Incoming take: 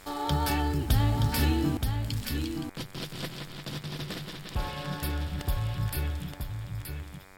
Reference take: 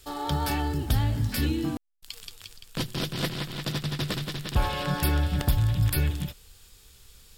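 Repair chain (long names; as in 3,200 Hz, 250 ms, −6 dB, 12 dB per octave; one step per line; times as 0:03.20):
hum removal 95 Hz, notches 26
echo removal 924 ms −5.5 dB
level correction +7.5 dB, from 0:02.67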